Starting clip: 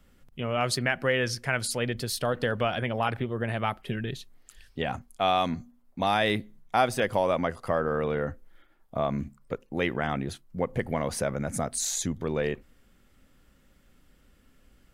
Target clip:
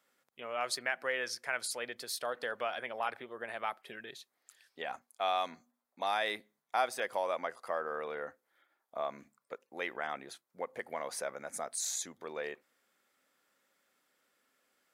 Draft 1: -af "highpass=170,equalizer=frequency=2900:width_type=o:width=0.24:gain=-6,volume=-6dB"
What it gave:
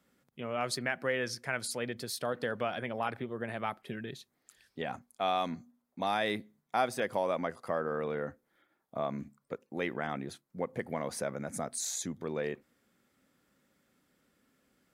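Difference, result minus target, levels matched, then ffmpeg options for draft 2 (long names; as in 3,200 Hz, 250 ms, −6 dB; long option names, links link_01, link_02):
125 Hz band +17.5 dB
-af "highpass=580,equalizer=frequency=2900:width_type=o:width=0.24:gain=-6,volume=-6dB"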